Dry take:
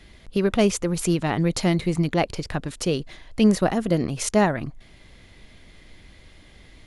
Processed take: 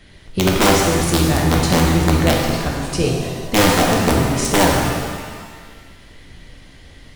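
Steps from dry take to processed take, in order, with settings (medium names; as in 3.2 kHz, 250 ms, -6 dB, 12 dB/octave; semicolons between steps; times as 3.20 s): octave divider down 1 oct, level -3 dB; integer overflow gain 10.5 dB; speed mistake 25 fps video run at 24 fps; pitch-shifted reverb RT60 1.6 s, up +7 st, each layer -8 dB, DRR -1.5 dB; trim +2 dB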